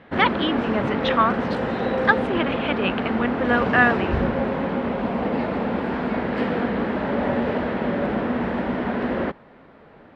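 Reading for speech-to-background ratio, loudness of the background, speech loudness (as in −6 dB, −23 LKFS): 1.5 dB, −24.5 LKFS, −23.0 LKFS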